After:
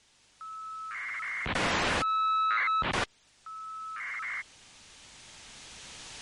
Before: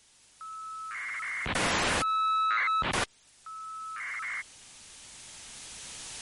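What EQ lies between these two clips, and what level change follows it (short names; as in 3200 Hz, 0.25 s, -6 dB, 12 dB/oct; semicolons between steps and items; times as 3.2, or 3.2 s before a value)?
Bessel low-pass 5300 Hz, order 2; 0.0 dB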